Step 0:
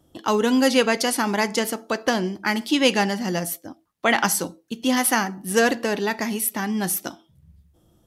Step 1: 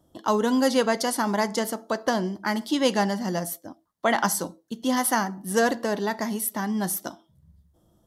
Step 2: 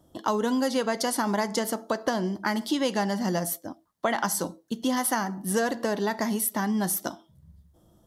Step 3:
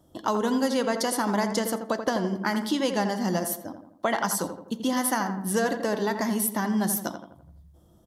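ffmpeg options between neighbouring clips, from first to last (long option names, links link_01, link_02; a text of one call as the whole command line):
ffmpeg -i in.wav -af "equalizer=frequency=200:width_type=o:width=0.33:gain=3,equalizer=frequency=630:width_type=o:width=0.33:gain=5,equalizer=frequency=1000:width_type=o:width=0.33:gain=5,equalizer=frequency=2500:width_type=o:width=0.33:gain=-12,volume=-4dB" out.wav
ffmpeg -i in.wav -af "acompressor=threshold=-26dB:ratio=4,volume=3dB" out.wav
ffmpeg -i in.wav -filter_complex "[0:a]asplit=2[link_01][link_02];[link_02]adelay=84,lowpass=frequency=1700:poles=1,volume=-7dB,asplit=2[link_03][link_04];[link_04]adelay=84,lowpass=frequency=1700:poles=1,volume=0.51,asplit=2[link_05][link_06];[link_06]adelay=84,lowpass=frequency=1700:poles=1,volume=0.51,asplit=2[link_07][link_08];[link_08]adelay=84,lowpass=frequency=1700:poles=1,volume=0.51,asplit=2[link_09][link_10];[link_10]adelay=84,lowpass=frequency=1700:poles=1,volume=0.51,asplit=2[link_11][link_12];[link_12]adelay=84,lowpass=frequency=1700:poles=1,volume=0.51[link_13];[link_01][link_03][link_05][link_07][link_09][link_11][link_13]amix=inputs=7:normalize=0" out.wav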